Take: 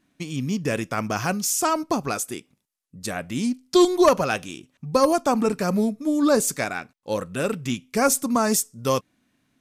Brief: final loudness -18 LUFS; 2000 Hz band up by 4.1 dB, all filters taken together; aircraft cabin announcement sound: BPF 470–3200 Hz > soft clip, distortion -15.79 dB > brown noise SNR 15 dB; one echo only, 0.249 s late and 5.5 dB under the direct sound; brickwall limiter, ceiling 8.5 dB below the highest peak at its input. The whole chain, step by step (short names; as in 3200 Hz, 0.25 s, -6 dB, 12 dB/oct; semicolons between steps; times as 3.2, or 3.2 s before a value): bell 2000 Hz +6.5 dB; limiter -12 dBFS; BPF 470–3200 Hz; echo 0.249 s -5.5 dB; soft clip -17.5 dBFS; brown noise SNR 15 dB; gain +10.5 dB